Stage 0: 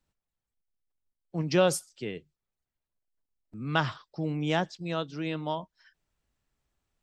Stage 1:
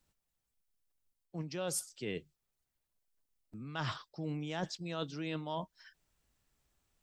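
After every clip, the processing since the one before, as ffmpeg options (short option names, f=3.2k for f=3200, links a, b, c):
-af "highshelf=f=4.7k:g=6.5,areverse,acompressor=threshold=-35dB:ratio=16,areverse,volume=1dB"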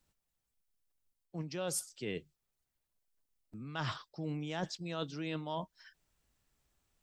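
-af anull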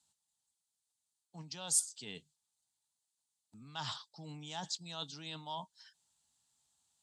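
-af "aexciter=amount=5.9:drive=5:freq=3.3k,highpass=110,equalizer=f=350:t=q:w=4:g=-10,equalizer=f=520:t=q:w=4:g=-8,equalizer=f=870:t=q:w=4:g=10,equalizer=f=5.5k:t=q:w=4:g=-7,lowpass=f=8.9k:w=0.5412,lowpass=f=8.9k:w=1.3066,volume=-7dB"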